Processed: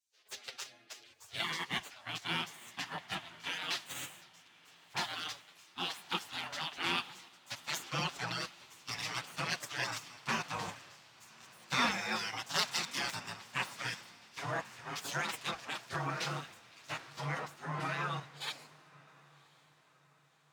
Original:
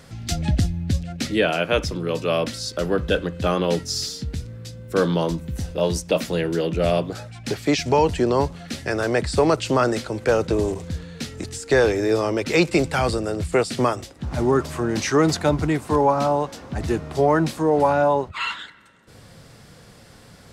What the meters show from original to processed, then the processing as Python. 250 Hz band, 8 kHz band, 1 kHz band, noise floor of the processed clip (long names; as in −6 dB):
−23.5 dB, −10.5 dB, −14.5 dB, −67 dBFS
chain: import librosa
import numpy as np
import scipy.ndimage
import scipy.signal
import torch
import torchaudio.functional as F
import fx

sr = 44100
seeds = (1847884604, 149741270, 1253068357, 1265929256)

p1 = scipy.ndimage.median_filter(x, 5, mode='constant')
p2 = fx.weighting(p1, sr, curve='A')
p3 = fx.spec_gate(p2, sr, threshold_db=-20, keep='weak')
p4 = scipy.signal.sosfilt(scipy.signal.butter(2, 72.0, 'highpass', fs=sr, output='sos'), p3)
p5 = fx.high_shelf(p4, sr, hz=4900.0, db=-4.5)
p6 = fx.level_steps(p5, sr, step_db=15)
p7 = p5 + F.gain(torch.from_numpy(p6), 2.5).numpy()
p8 = fx.env_flanger(p7, sr, rest_ms=9.9, full_db=-13.5)
p9 = p8 + fx.echo_diffused(p8, sr, ms=1096, feedback_pct=61, wet_db=-14.0, dry=0)
y = fx.band_widen(p9, sr, depth_pct=70)